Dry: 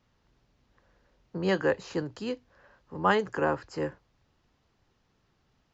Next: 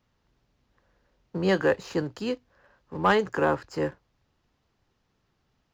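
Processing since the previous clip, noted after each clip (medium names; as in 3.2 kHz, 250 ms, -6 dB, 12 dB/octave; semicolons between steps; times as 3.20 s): waveshaping leveller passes 1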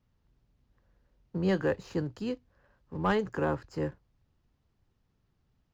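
bass shelf 240 Hz +12 dB; trim -8.5 dB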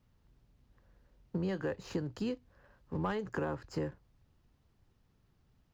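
compression 16:1, threshold -34 dBFS, peak gain reduction 12.5 dB; trim +3 dB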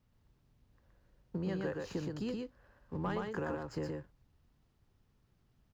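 delay 121 ms -3 dB; trim -3 dB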